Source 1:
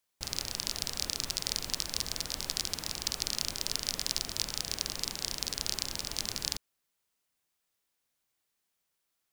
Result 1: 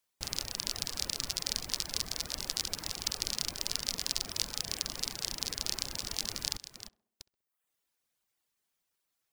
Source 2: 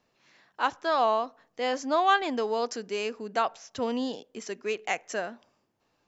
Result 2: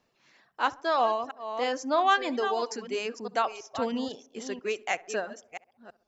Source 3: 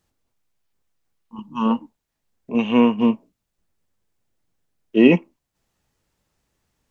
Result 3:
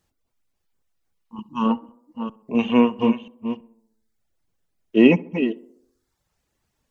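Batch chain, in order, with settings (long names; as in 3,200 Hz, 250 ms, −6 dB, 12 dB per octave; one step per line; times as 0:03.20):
delay that plays each chunk backwards 328 ms, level −9 dB
reverb reduction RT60 0.77 s
tape delay 67 ms, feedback 61%, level −19.5 dB, low-pass 1,400 Hz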